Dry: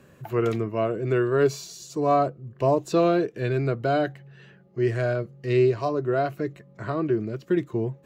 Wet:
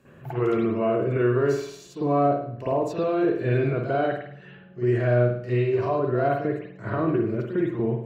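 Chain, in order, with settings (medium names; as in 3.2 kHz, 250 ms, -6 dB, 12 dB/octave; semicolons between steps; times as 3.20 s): peak limiter -20 dBFS, peak gain reduction 10.5 dB; reverberation, pre-delay 49 ms, DRR -11.5 dB; trim -7.5 dB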